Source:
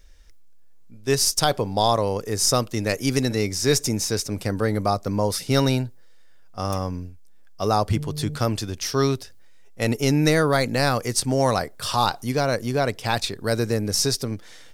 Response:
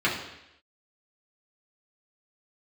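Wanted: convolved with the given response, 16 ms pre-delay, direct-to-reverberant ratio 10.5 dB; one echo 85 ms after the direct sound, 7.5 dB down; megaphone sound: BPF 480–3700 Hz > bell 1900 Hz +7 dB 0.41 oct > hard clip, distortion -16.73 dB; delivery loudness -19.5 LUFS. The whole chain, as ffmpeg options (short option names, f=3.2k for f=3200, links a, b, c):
-filter_complex "[0:a]aecho=1:1:85:0.422,asplit=2[a][b];[1:a]atrim=start_sample=2205,adelay=16[c];[b][c]afir=irnorm=-1:irlink=0,volume=-25dB[d];[a][d]amix=inputs=2:normalize=0,highpass=480,lowpass=3.7k,equalizer=f=1.9k:t=o:w=0.41:g=7,asoftclip=type=hard:threshold=-14.5dB,volume=6.5dB"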